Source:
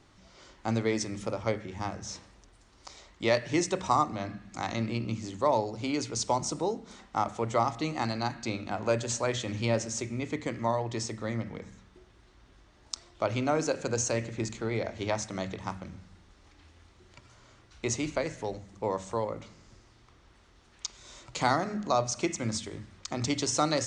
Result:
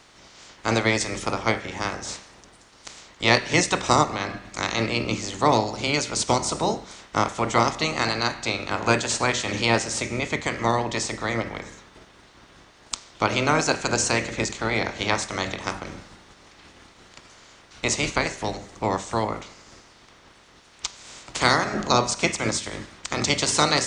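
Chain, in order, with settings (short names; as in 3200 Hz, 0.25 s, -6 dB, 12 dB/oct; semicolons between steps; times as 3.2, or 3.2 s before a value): spectral limiter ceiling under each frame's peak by 17 dB; de-hum 195.7 Hz, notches 35; gain +7 dB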